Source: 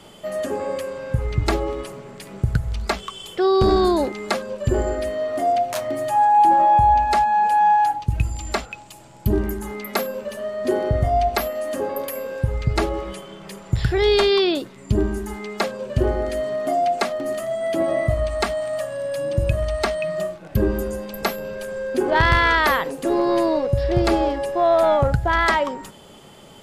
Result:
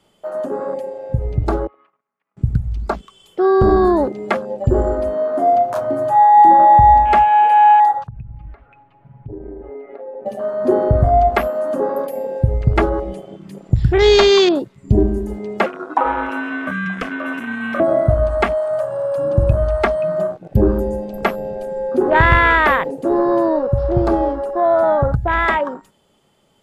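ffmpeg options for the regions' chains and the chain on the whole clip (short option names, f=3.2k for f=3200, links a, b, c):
-filter_complex "[0:a]asettb=1/sr,asplit=3[a][b][c];[a]atrim=end=1.674[d];[b]atrim=start=1.67:end=2.37,asetpts=PTS-STARTPTS,afade=t=in:d=0.004:c=qsin,afade=t=out:st=0.696:d=0.004:c=qsin,highpass=380,equalizer=f=380:t=q:w=4:g=-10,equalizer=f=560:t=q:w=4:g=-8,equalizer=f=1.2k:t=q:w=4:g=9,lowpass=f=2.5k:w=0.5412,lowpass=f=2.5k:w=1.3066,acompressor=threshold=-41dB:ratio=2:attack=3.2:release=140:knee=1:detection=peak,agate=range=-24dB:threshold=-42dB:ratio=16:release=100:detection=peak[e];[c]atrim=start=2.366[f];[d][e]acrossfade=d=0.004:c1=hsin:c2=qsin[g];[g][f]acrossfade=d=0.004:c1=qsin:c2=hsin,asettb=1/sr,asplit=3[h][i][j];[h]atrim=end=8.074[k];[i]atrim=start=8.07:end=10.26,asetpts=PTS-STARTPTS,afade=t=in:d=0.004:c=qsin,afade=t=out:st=2.186:d=0.004:c=qsin,lowpass=f=2.1k:w=0.5412,lowpass=f=2.1k:w=1.3066,aecho=1:1:7.2:0.81,atrim=end_sample=96579,acompressor=threshold=-33dB:ratio=10:attack=3.2:release=140:knee=1:detection=peak[l];[j]atrim=start=10.256[m];[k][l]acrossfade=d=0.004:c1=hsin:c2=qsin[n];[n][m]acrossfade=d=0.004:c1=qsin:c2=hsin,asettb=1/sr,asplit=3[o][p][q];[o]atrim=end=15.664[r];[p]atrim=start=15.66:end=17.8,asetpts=PTS-STARTPTS,afade=t=in:d=0.004:c=qsin,afade=t=out:st=2.136:d=0.004:c=qsin,acrossover=split=320|3000[s][t][u];[t]acompressor=threshold=-24dB:ratio=6:attack=3.2:release=140:knee=2.83:detection=peak[v];[s][v][u]amix=inputs=3:normalize=0,aeval=exprs='val(0)*sin(2*PI*890*n/s)':c=same[w];[q]atrim=start=17.796[x];[r][w]acrossfade=d=0.004:c1=hsin:c2=qsin[y];[y][x]acrossfade=d=0.004:c1=qsin:c2=hsin,dynaudnorm=f=270:g=31:m=4.5dB,afwtdn=0.0562,volume=2.5dB"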